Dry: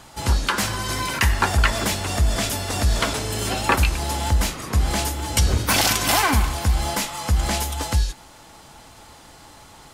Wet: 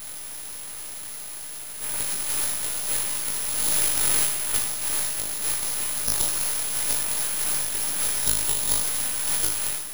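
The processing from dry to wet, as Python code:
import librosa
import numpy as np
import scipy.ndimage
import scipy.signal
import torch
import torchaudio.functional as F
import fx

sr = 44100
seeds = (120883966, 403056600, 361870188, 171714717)

p1 = x[::-1].copy()
p2 = scipy.signal.sosfilt(scipy.signal.cheby2(4, 40, 780.0, 'highpass', fs=sr, output='sos'), p1)
p3 = fx.high_shelf(p2, sr, hz=9100.0, db=-9.0)
p4 = p3 + fx.room_flutter(p3, sr, wall_m=3.3, rt60_s=0.43, dry=0)
p5 = np.abs(p4)
p6 = (np.kron(p5[::4], np.eye(4)[0]) * 4)[:len(p5)]
p7 = fx.env_flatten(p6, sr, amount_pct=50)
y = F.gain(torch.from_numpy(p7), -8.5).numpy()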